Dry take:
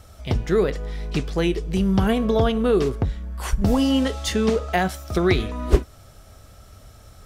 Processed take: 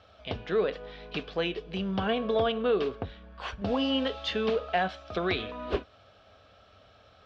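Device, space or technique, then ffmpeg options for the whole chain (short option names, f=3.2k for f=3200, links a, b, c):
overdrive pedal into a guitar cabinet: -filter_complex "[0:a]asplit=2[a][b];[b]highpass=f=720:p=1,volume=13dB,asoftclip=type=tanh:threshold=-1.5dB[c];[a][c]amix=inputs=2:normalize=0,lowpass=f=7.3k:p=1,volume=-6dB,highpass=88,equalizer=f=140:t=q:w=4:g=-10,equalizer=f=230:t=q:w=4:g=-3,equalizer=f=350:t=q:w=4:g=-7,equalizer=f=900:t=q:w=4:g=-6,equalizer=f=1.3k:t=q:w=4:g=-4,equalizer=f=2k:t=q:w=4:g=-9,lowpass=f=3.6k:w=0.5412,lowpass=f=3.6k:w=1.3066,volume=-7dB"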